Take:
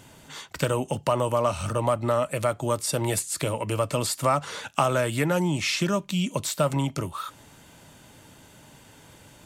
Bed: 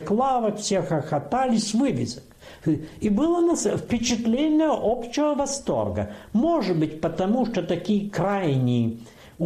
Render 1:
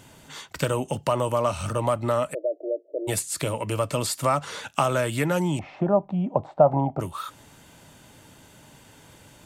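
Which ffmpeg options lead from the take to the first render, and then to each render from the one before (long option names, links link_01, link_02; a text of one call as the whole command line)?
ffmpeg -i in.wav -filter_complex "[0:a]asplit=3[link_01][link_02][link_03];[link_01]afade=type=out:start_time=2.33:duration=0.02[link_04];[link_02]asuperpass=centerf=450:order=20:qfactor=1.2,afade=type=in:start_time=2.33:duration=0.02,afade=type=out:start_time=3.07:duration=0.02[link_05];[link_03]afade=type=in:start_time=3.07:duration=0.02[link_06];[link_04][link_05][link_06]amix=inputs=3:normalize=0,asettb=1/sr,asplit=3[link_07][link_08][link_09];[link_07]atrim=end=5.594[link_10];[link_08]atrim=start=5.59:end=7,asetpts=PTS-STARTPTS,afade=type=in:duration=0.004:curve=qsin,afade=type=out:start_time=1.406:duration=0.004:curve=qsin,lowpass=frequency=760:width_type=q:width=8.8[link_11];[link_09]atrim=start=6.996[link_12];[link_10][link_11]acrossfade=duration=0.004:curve1=hsin:curve2=qsin[link_13];[link_13][link_12]acrossfade=duration=0.004:curve1=qsin:curve2=hsin" out.wav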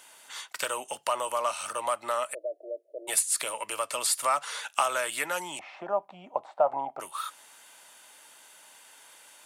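ffmpeg -i in.wav -af "highpass=880,equalizer=frequency=9800:width=3.7:gain=8.5" out.wav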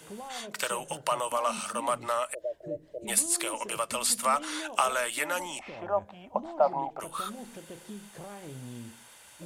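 ffmpeg -i in.wav -i bed.wav -filter_complex "[1:a]volume=-21dB[link_01];[0:a][link_01]amix=inputs=2:normalize=0" out.wav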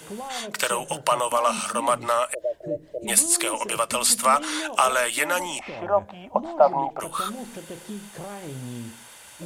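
ffmpeg -i in.wav -af "volume=7dB,alimiter=limit=-3dB:level=0:latency=1" out.wav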